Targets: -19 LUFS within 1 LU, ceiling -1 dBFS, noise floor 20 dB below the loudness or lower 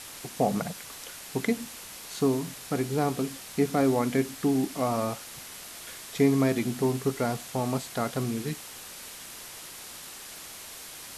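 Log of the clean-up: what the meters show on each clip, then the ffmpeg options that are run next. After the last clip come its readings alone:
noise floor -44 dBFS; noise floor target -49 dBFS; loudness -29.0 LUFS; peak -11.5 dBFS; loudness target -19.0 LUFS
-> -af "afftdn=nr=6:nf=-44"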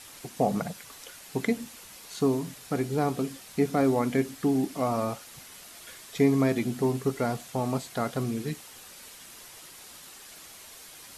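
noise floor -48 dBFS; noise floor target -49 dBFS
-> -af "afftdn=nr=6:nf=-48"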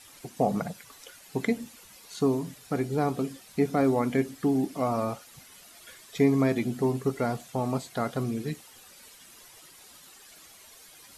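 noise floor -52 dBFS; loudness -28.5 LUFS; peak -11.5 dBFS; loudness target -19.0 LUFS
-> -af "volume=9.5dB"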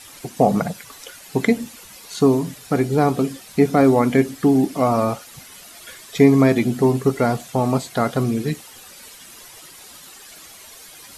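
loudness -19.0 LUFS; peak -2.0 dBFS; noise floor -43 dBFS

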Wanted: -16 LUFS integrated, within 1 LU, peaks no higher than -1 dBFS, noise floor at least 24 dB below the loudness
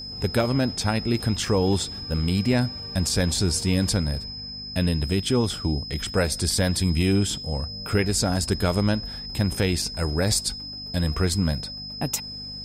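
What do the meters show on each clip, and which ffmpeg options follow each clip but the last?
hum 50 Hz; harmonics up to 250 Hz; hum level -44 dBFS; steady tone 5100 Hz; tone level -34 dBFS; loudness -24.5 LUFS; peak -9.5 dBFS; loudness target -16.0 LUFS
-> -af "bandreject=f=50:t=h:w=4,bandreject=f=100:t=h:w=4,bandreject=f=150:t=h:w=4,bandreject=f=200:t=h:w=4,bandreject=f=250:t=h:w=4"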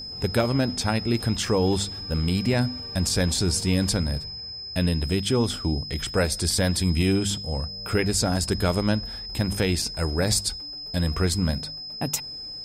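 hum none; steady tone 5100 Hz; tone level -34 dBFS
-> -af "bandreject=f=5.1k:w=30"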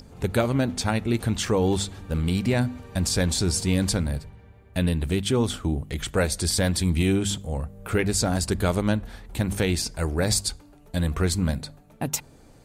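steady tone none; loudness -25.5 LUFS; peak -9.5 dBFS; loudness target -16.0 LUFS
-> -af "volume=9.5dB,alimiter=limit=-1dB:level=0:latency=1"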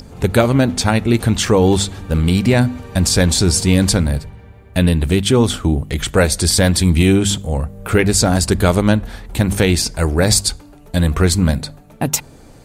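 loudness -16.0 LUFS; peak -1.0 dBFS; noise floor -42 dBFS

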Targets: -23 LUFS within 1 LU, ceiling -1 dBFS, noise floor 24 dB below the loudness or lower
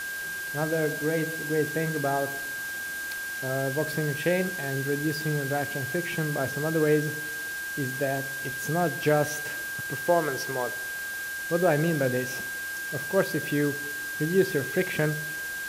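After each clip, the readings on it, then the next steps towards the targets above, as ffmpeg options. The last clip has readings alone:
steady tone 1600 Hz; tone level -32 dBFS; noise floor -34 dBFS; noise floor target -52 dBFS; loudness -28.0 LUFS; peak -9.5 dBFS; loudness target -23.0 LUFS
-> -af "bandreject=f=1.6k:w=30"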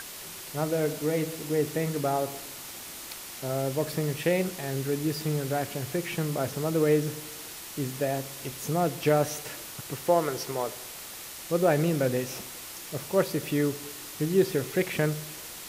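steady tone none; noise floor -42 dBFS; noise floor target -54 dBFS
-> -af "afftdn=nr=12:nf=-42"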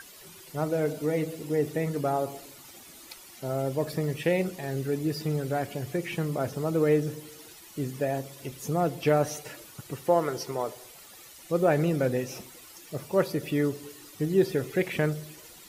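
noise floor -50 dBFS; noise floor target -53 dBFS
-> -af "afftdn=nr=6:nf=-50"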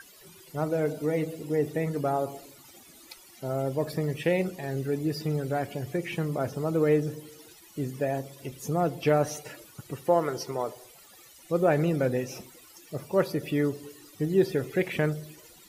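noise floor -53 dBFS; loudness -29.0 LUFS; peak -10.0 dBFS; loudness target -23.0 LUFS
-> -af "volume=6dB"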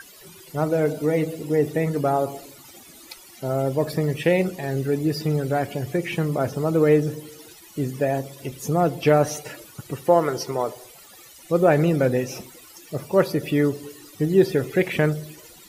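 loudness -23.0 LUFS; peak -4.0 dBFS; noise floor -47 dBFS

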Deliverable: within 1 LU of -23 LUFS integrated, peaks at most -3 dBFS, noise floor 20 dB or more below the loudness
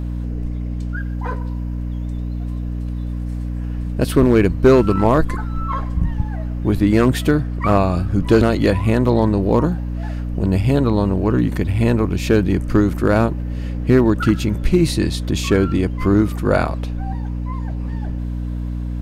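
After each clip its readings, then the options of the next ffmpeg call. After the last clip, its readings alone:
hum 60 Hz; harmonics up to 300 Hz; hum level -21 dBFS; loudness -19.0 LUFS; peak -2.5 dBFS; loudness target -23.0 LUFS
-> -af "bandreject=f=60:t=h:w=6,bandreject=f=120:t=h:w=6,bandreject=f=180:t=h:w=6,bandreject=f=240:t=h:w=6,bandreject=f=300:t=h:w=6"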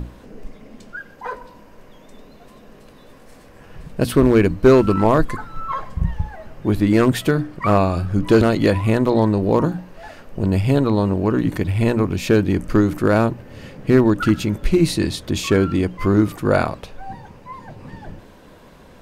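hum none; loudness -18.0 LUFS; peak -2.0 dBFS; loudness target -23.0 LUFS
-> -af "volume=-5dB"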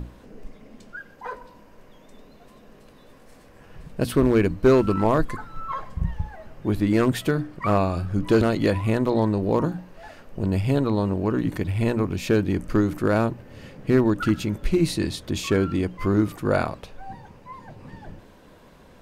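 loudness -23.0 LUFS; peak -7.0 dBFS; noise floor -50 dBFS

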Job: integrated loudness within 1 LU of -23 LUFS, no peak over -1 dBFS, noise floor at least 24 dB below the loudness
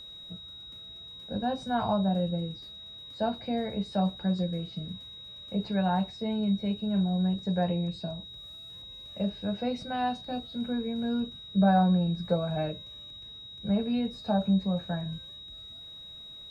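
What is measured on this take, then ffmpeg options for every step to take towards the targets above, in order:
steady tone 3800 Hz; tone level -43 dBFS; loudness -30.0 LUFS; peak -12.5 dBFS; loudness target -23.0 LUFS
-> -af "bandreject=f=3.8k:w=30"
-af "volume=7dB"

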